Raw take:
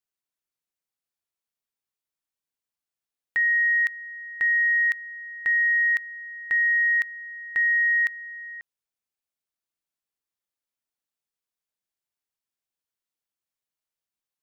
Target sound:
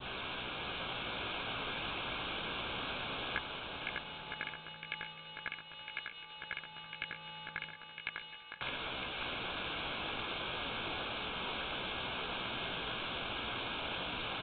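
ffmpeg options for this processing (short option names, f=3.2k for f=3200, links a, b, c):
-filter_complex "[0:a]aeval=exprs='val(0)+0.5*0.0119*sgn(val(0))':c=same,asettb=1/sr,asplit=3[a][b][c];[a]atrim=end=7.734[d];[b]atrim=start=7.73:end=8.56,asetpts=PTS-STARTPTS,afade=t=in:d=0.004:c=qsin,afade=t=out:st=0.826:d=0.004:c=qsin,highpass=f=1.2k:p=1[e];[c]atrim=start=8.556[f];[d][e]acrossfade=d=0.004:c1=hsin:c2=qsin[g];[g][f]acrossfade=d=0.004:c1=qsin:c2=hsin,adynamicequalizer=threshold=0.0178:dfrequency=2200:dqfactor=0.83:tfrequency=2200:tqfactor=0.83:attack=5:release=100:ratio=0.375:range=2.5:mode=boostabove:tftype=bell,asoftclip=type=tanh:threshold=-22dB,flanger=delay=15.5:depth=3.1:speed=0.34,asuperstop=centerf=1900:order=12:qfactor=4.2,aecho=1:1:600|960|1176|1306|1383:0.631|0.398|0.251|0.158|0.1,volume=16dB" -ar 8000 -c:a adpcm_g726 -b:a 24k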